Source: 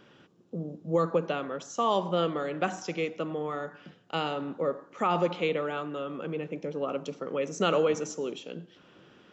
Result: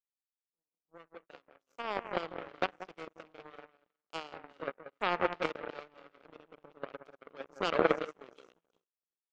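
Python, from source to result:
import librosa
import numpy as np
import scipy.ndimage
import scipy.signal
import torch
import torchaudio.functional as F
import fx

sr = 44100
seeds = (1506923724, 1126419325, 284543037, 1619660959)

p1 = fx.fade_in_head(x, sr, length_s=2.48)
p2 = p1 + fx.echo_alternate(p1, sr, ms=182, hz=1200.0, feedback_pct=52, wet_db=-3.0, dry=0)
p3 = fx.env_lowpass_down(p2, sr, base_hz=2600.0, full_db=-25.5)
p4 = fx.power_curve(p3, sr, exponent=3.0)
p5 = fx.bass_treble(p4, sr, bass_db=-9, treble_db=-2)
y = p5 * 10.0 ** (6.0 / 20.0)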